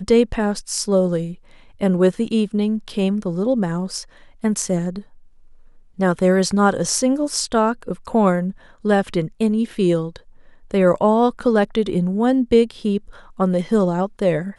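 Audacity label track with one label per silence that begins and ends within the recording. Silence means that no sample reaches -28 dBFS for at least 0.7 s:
5.000000	5.990000	silence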